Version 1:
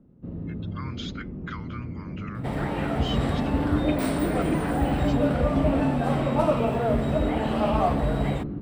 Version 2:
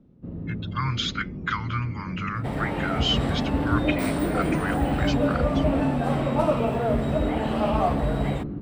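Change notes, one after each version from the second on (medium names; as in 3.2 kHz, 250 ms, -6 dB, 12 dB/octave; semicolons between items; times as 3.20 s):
speech +11.0 dB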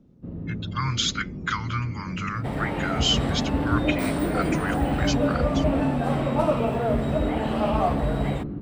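speech: remove low-pass 3.6 kHz 12 dB/octave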